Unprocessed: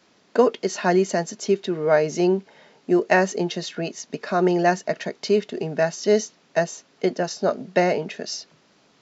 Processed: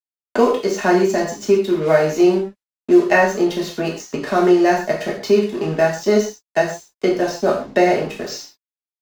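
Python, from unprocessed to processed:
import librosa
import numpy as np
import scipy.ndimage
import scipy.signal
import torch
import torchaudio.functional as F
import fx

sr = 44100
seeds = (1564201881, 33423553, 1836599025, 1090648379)

y = fx.low_shelf(x, sr, hz=170.0, db=5.0)
y = np.sign(y) * np.maximum(np.abs(y) - 10.0 ** (-37.5 / 20.0), 0.0)
y = fx.rev_gated(y, sr, seeds[0], gate_ms=160, shape='falling', drr_db=-3.0)
y = fx.band_squash(y, sr, depth_pct=40)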